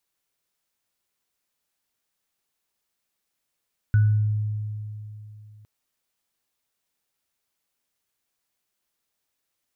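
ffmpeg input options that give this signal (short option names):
-f lavfi -i "aevalsrc='0.211*pow(10,-3*t/3.07)*sin(2*PI*106*t)+0.0266*pow(10,-3*t/0.49)*sin(2*PI*1480*t)':d=1.71:s=44100"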